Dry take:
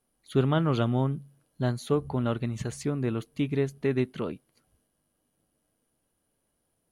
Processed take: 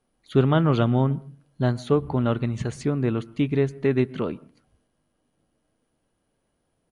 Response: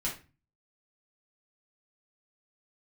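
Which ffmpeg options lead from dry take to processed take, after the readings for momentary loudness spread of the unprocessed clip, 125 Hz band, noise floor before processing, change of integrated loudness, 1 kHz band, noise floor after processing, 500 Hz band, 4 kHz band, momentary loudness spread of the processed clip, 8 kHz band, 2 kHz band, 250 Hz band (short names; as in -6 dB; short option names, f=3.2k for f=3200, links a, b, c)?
8 LU, +5.0 dB, -77 dBFS, +5.0 dB, +5.0 dB, -74 dBFS, +5.0 dB, +2.5 dB, 8 LU, -1.5 dB, +4.5 dB, +5.0 dB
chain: -filter_complex "[0:a]aresample=22050,aresample=44100,highshelf=f=6.6k:g=-11.5,asplit=2[a][b];[1:a]atrim=start_sample=2205,lowpass=2.5k,adelay=111[c];[b][c]afir=irnorm=-1:irlink=0,volume=-26dB[d];[a][d]amix=inputs=2:normalize=0,volume=5dB"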